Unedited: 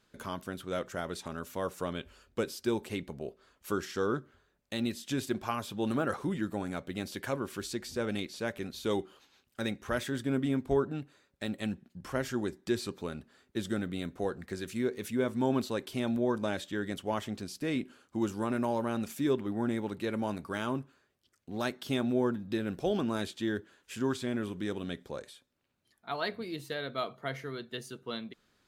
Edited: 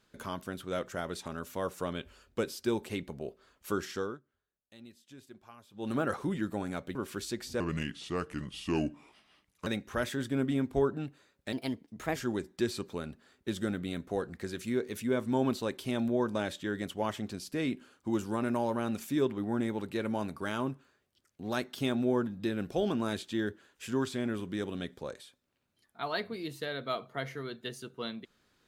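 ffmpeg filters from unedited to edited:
ffmpeg -i in.wav -filter_complex "[0:a]asplit=8[link_01][link_02][link_03][link_04][link_05][link_06][link_07][link_08];[link_01]atrim=end=4.18,asetpts=PTS-STARTPTS,afade=type=out:start_time=3.92:duration=0.26:silence=0.105925[link_09];[link_02]atrim=start=4.18:end=5.72,asetpts=PTS-STARTPTS,volume=-19.5dB[link_10];[link_03]atrim=start=5.72:end=6.952,asetpts=PTS-STARTPTS,afade=type=in:duration=0.26:silence=0.105925[link_11];[link_04]atrim=start=7.368:end=8.024[link_12];[link_05]atrim=start=8.02:end=9.61,asetpts=PTS-STARTPTS,asetrate=33957,aresample=44100[link_13];[link_06]atrim=start=9.606:end=11.474[link_14];[link_07]atrim=start=11.47:end=12.24,asetpts=PTS-STARTPTS,asetrate=53802,aresample=44100[link_15];[link_08]atrim=start=12.236[link_16];[link_09][link_10][link_11]concat=n=3:v=0:a=1[link_17];[link_17][link_12]acrossfade=duration=0.004:curve1=hsin:curve2=hsin[link_18];[link_18][link_13]acrossfade=duration=0.004:curve1=hsin:curve2=hsin[link_19];[link_19][link_14]acrossfade=duration=0.004:curve1=hsin:curve2=hsin[link_20];[link_20][link_15]acrossfade=duration=0.004:curve1=hsin:curve2=hsin[link_21];[link_21][link_16]acrossfade=duration=0.004:curve1=hsin:curve2=hsin" out.wav

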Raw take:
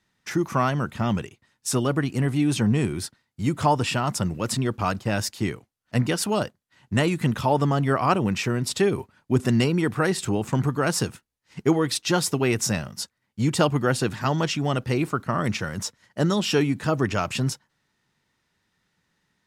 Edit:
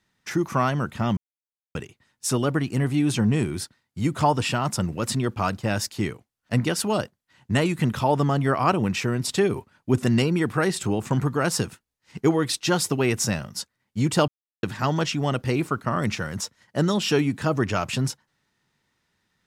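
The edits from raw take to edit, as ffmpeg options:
ffmpeg -i in.wav -filter_complex "[0:a]asplit=4[link_01][link_02][link_03][link_04];[link_01]atrim=end=1.17,asetpts=PTS-STARTPTS,afade=type=out:start_time=1.166:duration=0.004:curve=hsin,apad=pad_dur=0.58[link_05];[link_02]atrim=start=1.17:end=13.7,asetpts=PTS-STARTPTS,afade=type=in:duration=0.004:curve=hsin,afade=type=out:start_time=12.526:duration=0.004:curve=hsin[link_06];[link_03]atrim=start=13.7:end=14.05,asetpts=PTS-STARTPTS,volume=0[link_07];[link_04]atrim=start=14.05,asetpts=PTS-STARTPTS,afade=type=in:duration=0.004:curve=hsin[link_08];[link_05][link_06][link_07][link_08]concat=n=4:v=0:a=1" out.wav

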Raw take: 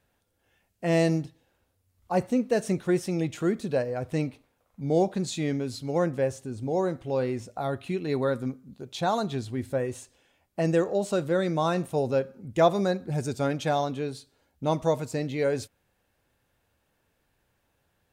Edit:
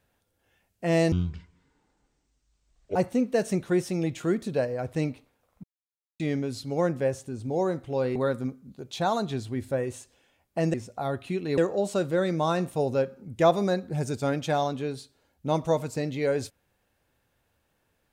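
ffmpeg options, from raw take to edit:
ffmpeg -i in.wav -filter_complex "[0:a]asplit=8[link_01][link_02][link_03][link_04][link_05][link_06][link_07][link_08];[link_01]atrim=end=1.124[link_09];[link_02]atrim=start=1.12:end=2.13,asetpts=PTS-STARTPTS,asetrate=24255,aresample=44100[link_10];[link_03]atrim=start=2.126:end=4.81,asetpts=PTS-STARTPTS,afade=type=out:start_time=2.68:duration=0.004:curve=hsin[link_11];[link_04]atrim=start=4.81:end=5.37,asetpts=PTS-STARTPTS,volume=0[link_12];[link_05]atrim=start=5.37:end=7.332,asetpts=PTS-STARTPTS,afade=type=in:duration=0.004:curve=hsin[link_13];[link_06]atrim=start=8.168:end=10.752[link_14];[link_07]atrim=start=7.328:end=8.172[link_15];[link_08]atrim=start=10.748[link_16];[link_09][link_10]acrossfade=duration=0.004:curve1=hsin:curve2=hsin[link_17];[link_11][link_12][link_13]concat=n=3:v=0:a=1[link_18];[link_17][link_18]acrossfade=duration=0.004:curve1=hsin:curve2=hsin[link_19];[link_19][link_14]acrossfade=duration=0.004:curve1=hsin:curve2=hsin[link_20];[link_20][link_15]acrossfade=duration=0.004:curve1=hsin:curve2=hsin[link_21];[link_21][link_16]acrossfade=duration=0.004:curve1=hsin:curve2=hsin" out.wav

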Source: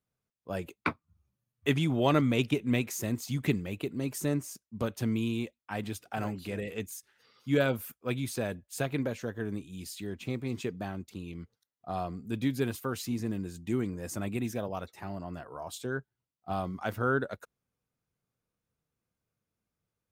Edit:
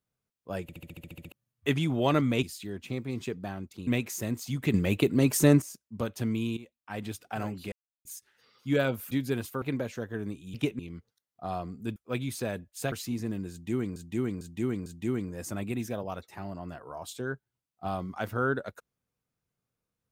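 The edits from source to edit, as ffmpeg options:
ffmpeg -i in.wav -filter_complex "[0:a]asplit=27[link_01][link_02][link_03][link_04][link_05][link_06][link_07][link_08][link_09][link_10][link_11][link_12][link_13][link_14][link_15][link_16][link_17][link_18][link_19][link_20][link_21][link_22][link_23][link_24][link_25][link_26][link_27];[link_01]atrim=end=0.692[link_28];[link_02]atrim=start=0.618:end=0.692[link_29];[link_03]atrim=start=0.618:end=0.692[link_30];[link_04]atrim=start=0.618:end=0.692[link_31];[link_05]atrim=start=0.618:end=0.692[link_32];[link_06]atrim=start=0.618:end=0.692[link_33];[link_07]atrim=start=0.618:end=0.692[link_34];[link_08]atrim=start=0.618:end=0.692[link_35];[link_09]atrim=start=0.618:end=0.692[link_36];[link_10]atrim=start=0.618:end=0.692[link_37];[link_11]atrim=start=1.318:end=2.432[link_38];[link_12]atrim=start=9.798:end=11.242[link_39];[link_13]atrim=start=2.678:end=3.552[link_40];[link_14]atrim=start=3.548:end=4.432,asetpts=PTS-STARTPTS,volume=10dB[link_41];[link_15]atrim=start=4.428:end=5.38,asetpts=PTS-STARTPTS,afade=type=out:start_time=0.948:duration=0.004:curve=hsin:silence=0.16788[link_42];[link_16]atrim=start=5.38:end=6.53,asetpts=PTS-STARTPTS,afade=type=in:duration=0.5:silence=0.16788,afade=type=out:start_time=1.146:duration=0.004:curve=hsin[link_43];[link_17]atrim=start=6.53:end=6.86,asetpts=PTS-STARTPTS,volume=0[link_44];[link_18]atrim=start=6.86:end=7.922,asetpts=PTS-STARTPTS,afade=type=in:duration=0.004:curve=hsin[link_45];[link_19]atrim=start=12.408:end=12.922[link_46];[link_20]atrim=start=8.878:end=9.802[link_47];[link_21]atrim=start=2.428:end=2.682[link_48];[link_22]atrim=start=11.238:end=12.412[link_49];[link_23]atrim=start=7.918:end=8.882[link_50];[link_24]atrim=start=12.918:end=13.962[link_51];[link_25]atrim=start=13.508:end=13.962[link_52];[link_26]atrim=start=13.508:end=13.962[link_53];[link_27]atrim=start=13.508[link_54];[link_28][link_29]acrossfade=duration=0.004:curve1=hsin:curve2=hsin[link_55];[link_55][link_30]acrossfade=duration=0.004:curve1=hsin:curve2=hsin[link_56];[link_56][link_31]acrossfade=duration=0.004:curve1=hsin:curve2=hsin[link_57];[link_57][link_32]acrossfade=duration=0.004:curve1=hsin:curve2=hsin[link_58];[link_58][link_33]acrossfade=duration=0.004:curve1=hsin:curve2=hsin[link_59];[link_59][link_34]acrossfade=duration=0.004:curve1=hsin:curve2=hsin[link_60];[link_60][link_35]acrossfade=duration=0.004:curve1=hsin:curve2=hsin[link_61];[link_61][link_36]acrossfade=duration=0.004:curve1=hsin:curve2=hsin[link_62];[link_62][link_37]acrossfade=duration=0.004:curve1=hsin:curve2=hsin[link_63];[link_63][link_38]acrossfade=duration=0.004:curve1=hsin:curve2=hsin[link_64];[link_64][link_39]acrossfade=duration=0.004:curve1=hsin:curve2=hsin[link_65];[link_65][link_40]acrossfade=duration=0.004:curve1=hsin:curve2=hsin[link_66];[link_66][link_41]acrossfade=duration=0.004:curve1=hsin:curve2=hsin[link_67];[link_42][link_43][link_44][link_45]concat=n=4:v=0:a=1[link_68];[link_67][link_68]acrossfade=duration=0.004:curve1=hsin:curve2=hsin[link_69];[link_69][link_46]acrossfade=duration=0.004:curve1=hsin:curve2=hsin[link_70];[link_70][link_47]acrossfade=duration=0.004:curve1=hsin:curve2=hsin[link_71];[link_71][link_48]acrossfade=duration=0.004:curve1=hsin:curve2=hsin[link_72];[link_72][link_49]acrossfade=duration=0.004:curve1=hsin:curve2=hsin[link_73];[link_73][link_50]acrossfade=duration=0.004:curve1=hsin:curve2=hsin[link_74];[link_74][link_51]acrossfade=duration=0.004:curve1=hsin:curve2=hsin[link_75];[link_75][link_52]acrossfade=duration=0.004:curve1=hsin:curve2=hsin[link_76];[link_76][link_53]acrossfade=duration=0.004:curve1=hsin:curve2=hsin[link_77];[link_77][link_54]acrossfade=duration=0.004:curve1=hsin:curve2=hsin" out.wav

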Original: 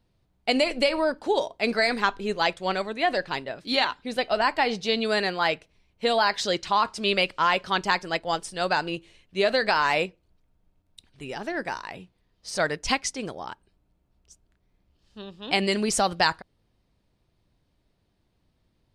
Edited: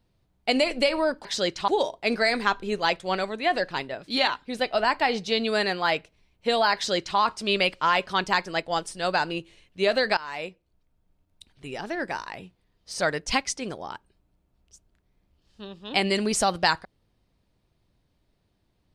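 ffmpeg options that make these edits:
ffmpeg -i in.wav -filter_complex "[0:a]asplit=4[link_01][link_02][link_03][link_04];[link_01]atrim=end=1.252[link_05];[link_02]atrim=start=6.318:end=6.752[link_06];[link_03]atrim=start=1.248:end=9.74,asetpts=PTS-STARTPTS,afade=type=out:start_time=8.488:duration=0.004:curve=hsin:silence=0.112202[link_07];[link_04]atrim=start=9.74,asetpts=PTS-STARTPTS,afade=type=in:duration=1.5:curve=qsin:silence=0.112202[link_08];[link_05][link_06]acrossfade=duration=0.004:curve1=hsin:curve2=hsin[link_09];[link_07][link_08]concat=n=2:v=0:a=1[link_10];[link_09][link_10]acrossfade=duration=0.004:curve1=hsin:curve2=hsin" out.wav

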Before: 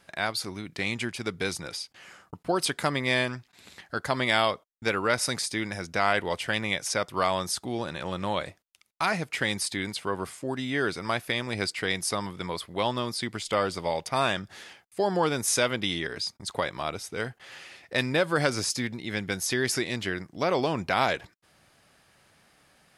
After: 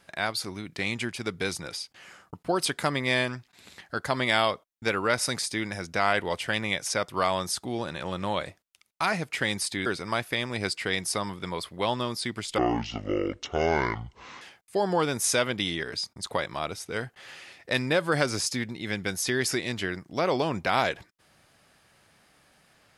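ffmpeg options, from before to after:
ffmpeg -i in.wav -filter_complex "[0:a]asplit=4[link_01][link_02][link_03][link_04];[link_01]atrim=end=9.862[link_05];[link_02]atrim=start=10.828:end=13.554[link_06];[link_03]atrim=start=13.55:end=14.65,asetpts=PTS-STARTPTS,asetrate=26460,aresample=44100[link_07];[link_04]atrim=start=14.646[link_08];[link_05][link_06]acrossfade=duration=0.004:curve1=hsin:curve2=hsin[link_09];[link_09][link_07]acrossfade=duration=0.004:curve1=hsin:curve2=hsin[link_10];[link_10][link_08]acrossfade=duration=0.004:curve1=hsin:curve2=hsin" out.wav

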